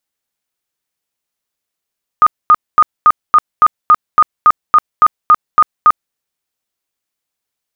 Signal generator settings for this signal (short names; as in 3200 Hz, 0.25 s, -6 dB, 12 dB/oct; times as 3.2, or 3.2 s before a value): tone bursts 1230 Hz, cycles 56, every 0.28 s, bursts 14, -2.5 dBFS